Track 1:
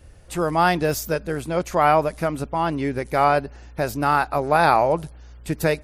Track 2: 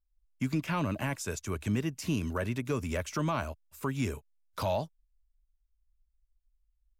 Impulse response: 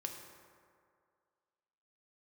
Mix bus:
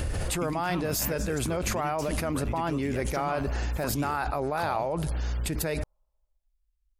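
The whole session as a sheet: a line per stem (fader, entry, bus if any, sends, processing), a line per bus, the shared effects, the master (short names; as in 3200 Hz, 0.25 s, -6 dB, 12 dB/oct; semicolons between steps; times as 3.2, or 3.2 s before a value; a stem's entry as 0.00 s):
-14.0 dB, 0.00 s, no send, notch 5800 Hz, Q 18; fast leveller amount 100%
-3.5 dB, 0.00 s, send -7.5 dB, compressor, threshold -32 dBFS, peak gain reduction 7.5 dB; vibrato 9.5 Hz 91 cents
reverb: on, RT60 2.2 s, pre-delay 3 ms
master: dry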